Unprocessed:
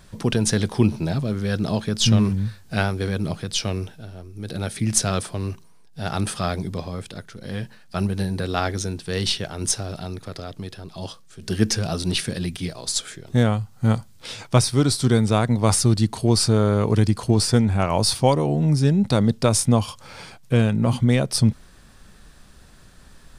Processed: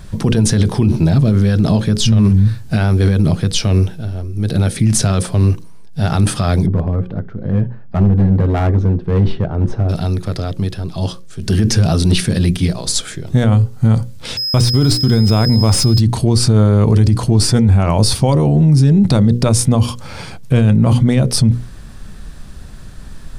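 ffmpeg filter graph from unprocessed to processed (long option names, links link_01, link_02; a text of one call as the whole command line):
ffmpeg -i in.wav -filter_complex "[0:a]asettb=1/sr,asplit=3[link_01][link_02][link_03];[link_01]atrim=end=6.664[link_04];[link_02]atrim=start=6.66:end=9.89,asetpts=PTS-STARTPTS,afade=type=in:duration=0.004:curve=qsin,afade=type=out:start_time=3.226:duration=0.004:curve=qsin,lowpass=1100,bandreject=frequency=388.5:width_type=h:width=4,bandreject=frequency=777:width_type=h:width=4,bandreject=frequency=1165.5:width_type=h:width=4,bandreject=frequency=1554:width_type=h:width=4,bandreject=frequency=1942.5:width_type=h:width=4,bandreject=frequency=2331:width_type=h:width=4,bandreject=frequency=2719.5:width_type=h:width=4,bandreject=frequency=3108:width_type=h:width=4,bandreject=frequency=3496.5:width_type=h:width=4,bandreject=frequency=3885:width_type=h:width=4,bandreject=frequency=4273.5:width_type=h:width=4,bandreject=frequency=4662:width_type=h:width=4,bandreject=frequency=5050.5:width_type=h:width=4,bandreject=frequency=5439:width_type=h:width=4,bandreject=frequency=5827.5:width_type=h:width=4,bandreject=frequency=6216:width_type=h:width=4,bandreject=frequency=6604.5:width_type=h:width=4,bandreject=frequency=6993:width_type=h:width=4,bandreject=frequency=7381.5:width_type=h:width=4,bandreject=frequency=7770:width_type=h:width=4,bandreject=frequency=8158.5:width_type=h:width=4,bandreject=frequency=8547:width_type=h:width=4,bandreject=frequency=8935.5:width_type=h:width=4,bandreject=frequency=9324:width_type=h:width=4,bandreject=frequency=9712.5:width_type=h:width=4,bandreject=frequency=10101:width_type=h:width=4,bandreject=frequency=10489.5:width_type=h:width=4,bandreject=frequency=10878:width_type=h:width=4,bandreject=frequency=11266.5:width_type=h:width=4,bandreject=frequency=11655:width_type=h:width=4,asoftclip=type=hard:threshold=-22.5dB[link_05];[link_03]atrim=start=9.886[link_06];[link_04][link_05]acrossfade=duration=0.004:curve1=hsin:curve2=qsin[link_07];[link_07][link_06]acrossfade=duration=0.004:curve1=qsin:curve2=hsin,asettb=1/sr,asplit=3[link_08][link_09][link_10];[link_08]atrim=end=14.374[link_11];[link_09]atrim=start=14.37:end=16,asetpts=PTS-STARTPTS,afade=type=in:duration=0.004:curve=qsin,afade=type=out:start_time=1.626:duration=0.004:curve=qsin,agate=range=-39dB:threshold=-27dB:ratio=16:release=100:detection=peak,aeval=exprs='val(0)+0.0631*sin(2*PI*5100*n/s)':channel_layout=same,adynamicsmooth=sensitivity=7:basefreq=2200[link_12];[link_10]atrim=start=15.996[link_13];[link_11][link_12]acrossfade=duration=0.004:curve1=hsin:curve2=qsin[link_14];[link_14][link_13]acrossfade=duration=0.004:curve1=qsin:curve2=hsin,lowshelf=frequency=280:gain=10.5,bandreject=frequency=60:width_type=h:width=6,bandreject=frequency=120:width_type=h:width=6,bandreject=frequency=180:width_type=h:width=6,bandreject=frequency=240:width_type=h:width=6,bandreject=frequency=300:width_type=h:width=6,bandreject=frequency=360:width_type=h:width=6,bandreject=frequency=420:width_type=h:width=6,bandreject=frequency=480:width_type=h:width=6,bandreject=frequency=540:width_type=h:width=6,alimiter=limit=-12dB:level=0:latency=1:release=31,volume=7.5dB" out.wav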